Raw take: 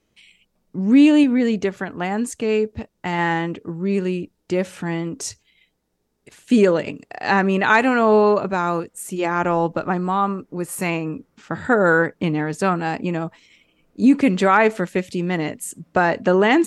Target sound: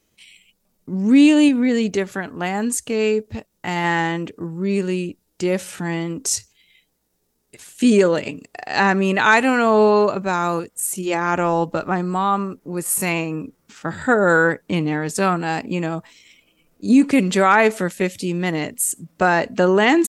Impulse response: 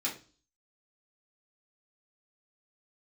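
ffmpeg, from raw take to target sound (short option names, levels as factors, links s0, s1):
-af "atempo=0.83,crystalizer=i=2:c=0"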